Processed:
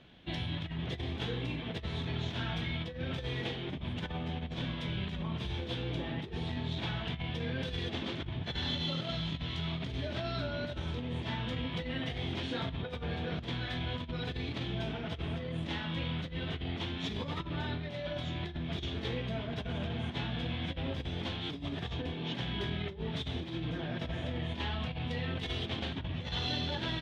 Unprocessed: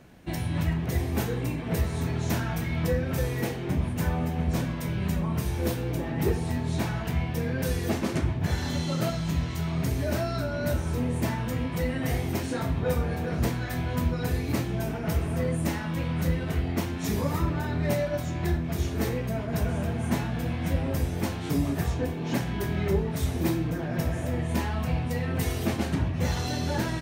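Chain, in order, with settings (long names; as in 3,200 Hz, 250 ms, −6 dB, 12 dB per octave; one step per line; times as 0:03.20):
compressor whose output falls as the input rises −28 dBFS, ratio −0.5
low-pass with resonance 3,400 Hz, resonance Q 6.6
level −8 dB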